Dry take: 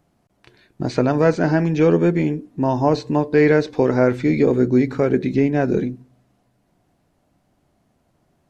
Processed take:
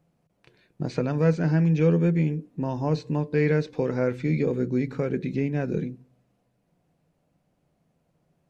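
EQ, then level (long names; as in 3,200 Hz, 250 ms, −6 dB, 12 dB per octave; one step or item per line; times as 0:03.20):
dynamic equaliser 600 Hz, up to −6 dB, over −27 dBFS, Q 1
thirty-one-band graphic EQ 160 Hz +11 dB, 500 Hz +8 dB, 2,500 Hz +4 dB
−9.0 dB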